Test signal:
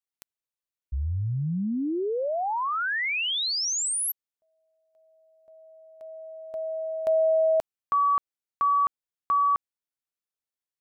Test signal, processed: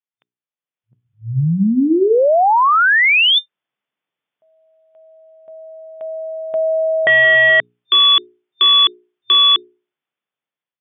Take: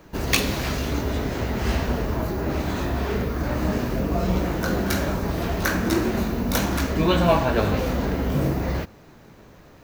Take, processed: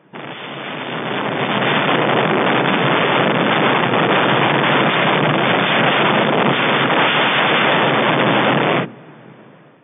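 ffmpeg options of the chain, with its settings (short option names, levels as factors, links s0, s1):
-af "aeval=exprs='(mod(10.6*val(0)+1,2)-1)/10.6':c=same,afftfilt=real='re*between(b*sr/4096,110,3600)':imag='im*between(b*sr/4096,110,3600)':win_size=4096:overlap=0.75,dynaudnorm=f=540:g=5:m=6.68,bandreject=f=60:t=h:w=6,bandreject=f=120:t=h:w=6,bandreject=f=180:t=h:w=6,bandreject=f=240:t=h:w=6,bandreject=f=300:t=h:w=6,bandreject=f=360:t=h:w=6,bandreject=f=420:t=h:w=6,volume=0.891"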